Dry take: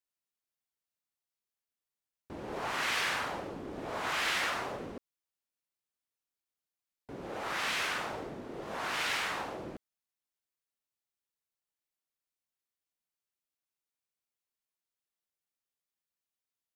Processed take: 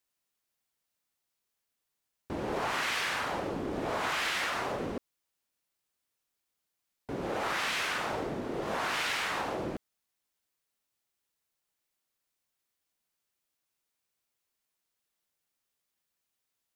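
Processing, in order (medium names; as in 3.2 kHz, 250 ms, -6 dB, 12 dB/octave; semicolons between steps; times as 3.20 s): compression, threshold -37 dBFS, peak gain reduction 9 dB; trim +8 dB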